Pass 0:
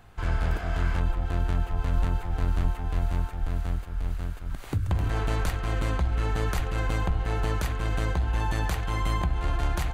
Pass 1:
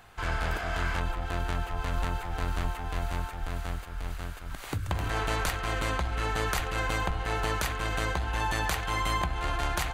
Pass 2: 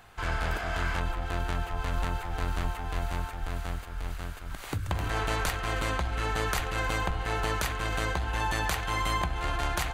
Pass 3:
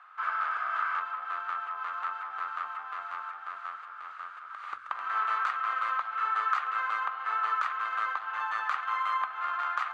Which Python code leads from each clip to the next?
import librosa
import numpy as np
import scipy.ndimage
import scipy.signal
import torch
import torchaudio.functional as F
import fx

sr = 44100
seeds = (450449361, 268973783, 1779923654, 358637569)

y1 = fx.low_shelf(x, sr, hz=430.0, db=-11.5)
y1 = y1 * librosa.db_to_amplitude(5.0)
y2 = y1 + 10.0 ** (-21.5 / 20.0) * np.pad(y1, (int(314 * sr / 1000.0), 0))[:len(y1)]
y3 = fx.ladder_bandpass(y2, sr, hz=1300.0, resonance_pct=80)
y3 = y3 * librosa.db_to_amplitude(8.0)